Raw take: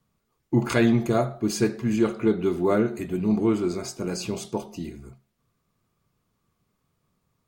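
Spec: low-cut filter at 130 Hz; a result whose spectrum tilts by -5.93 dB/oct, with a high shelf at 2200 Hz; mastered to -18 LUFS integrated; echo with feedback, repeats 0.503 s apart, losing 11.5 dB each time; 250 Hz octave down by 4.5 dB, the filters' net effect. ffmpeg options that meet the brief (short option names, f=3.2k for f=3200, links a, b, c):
-af "highpass=130,equalizer=f=250:t=o:g=-5.5,highshelf=f=2.2k:g=-3.5,aecho=1:1:503|1006|1509:0.266|0.0718|0.0194,volume=9.5dB"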